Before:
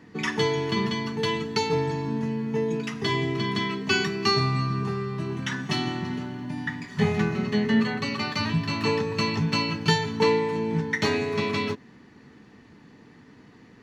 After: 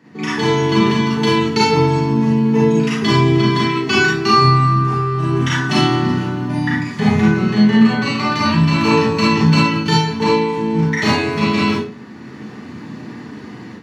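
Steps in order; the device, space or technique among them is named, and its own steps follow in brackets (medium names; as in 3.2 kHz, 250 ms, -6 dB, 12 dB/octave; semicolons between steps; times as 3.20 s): far laptop microphone (reverberation RT60 0.40 s, pre-delay 33 ms, DRR -5.5 dB; high-pass 100 Hz 24 dB/octave; level rider gain up to 12 dB); trim -1 dB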